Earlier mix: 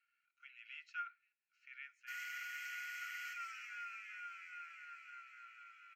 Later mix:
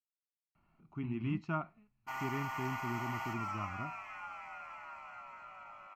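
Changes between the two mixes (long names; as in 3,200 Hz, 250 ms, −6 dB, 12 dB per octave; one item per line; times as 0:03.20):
speech: entry +0.55 s
master: remove Chebyshev high-pass filter 1,400 Hz, order 8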